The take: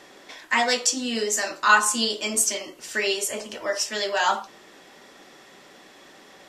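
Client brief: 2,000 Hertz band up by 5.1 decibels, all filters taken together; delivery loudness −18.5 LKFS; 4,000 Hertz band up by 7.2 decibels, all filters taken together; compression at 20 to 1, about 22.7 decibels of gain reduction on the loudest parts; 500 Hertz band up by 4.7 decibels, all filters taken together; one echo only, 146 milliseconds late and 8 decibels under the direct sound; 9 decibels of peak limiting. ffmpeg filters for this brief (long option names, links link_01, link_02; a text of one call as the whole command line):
ffmpeg -i in.wav -af "equalizer=frequency=500:width_type=o:gain=5.5,equalizer=frequency=2000:width_type=o:gain=5,equalizer=frequency=4000:width_type=o:gain=8,acompressor=threshold=-30dB:ratio=20,alimiter=level_in=1dB:limit=-24dB:level=0:latency=1,volume=-1dB,aecho=1:1:146:0.398,volume=17dB" out.wav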